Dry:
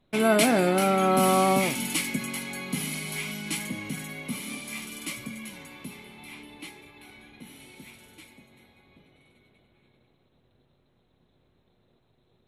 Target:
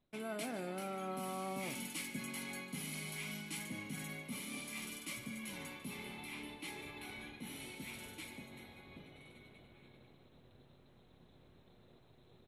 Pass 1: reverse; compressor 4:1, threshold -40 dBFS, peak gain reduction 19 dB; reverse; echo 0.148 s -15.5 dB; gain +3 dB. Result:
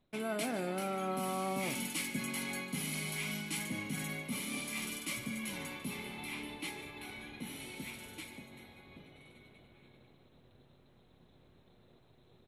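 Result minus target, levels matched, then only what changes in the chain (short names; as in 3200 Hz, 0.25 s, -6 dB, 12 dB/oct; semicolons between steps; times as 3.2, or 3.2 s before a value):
compressor: peak gain reduction -5.5 dB
change: compressor 4:1, threshold -47.5 dBFS, peak gain reduction 25 dB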